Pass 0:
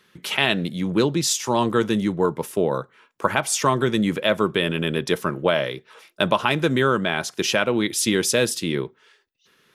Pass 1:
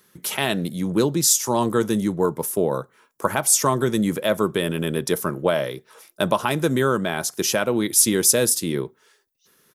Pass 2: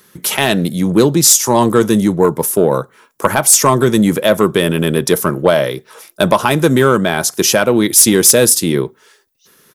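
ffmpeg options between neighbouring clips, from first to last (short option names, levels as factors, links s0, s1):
-af "firequalizer=gain_entry='entry(660,0);entry(2700,-7);entry(5700,4);entry(12000,13)':delay=0.05:min_phase=1"
-af "aeval=exprs='0.891*sin(PI/2*2*val(0)/0.891)':c=same"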